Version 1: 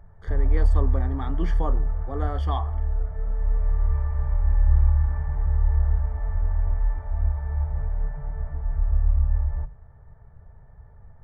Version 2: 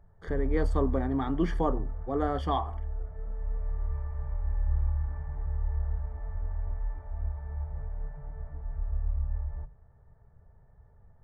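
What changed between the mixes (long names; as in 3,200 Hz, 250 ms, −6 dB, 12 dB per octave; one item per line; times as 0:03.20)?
background −10.0 dB
master: add parametric band 330 Hz +4.5 dB 2.1 octaves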